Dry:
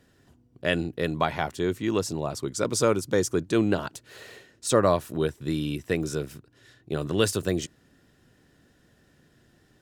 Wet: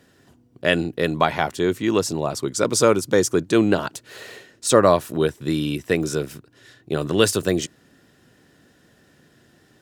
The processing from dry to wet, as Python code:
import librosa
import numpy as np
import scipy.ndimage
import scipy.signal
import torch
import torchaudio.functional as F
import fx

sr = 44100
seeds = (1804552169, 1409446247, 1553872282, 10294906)

y = fx.highpass(x, sr, hz=140.0, slope=6)
y = y * librosa.db_to_amplitude(6.5)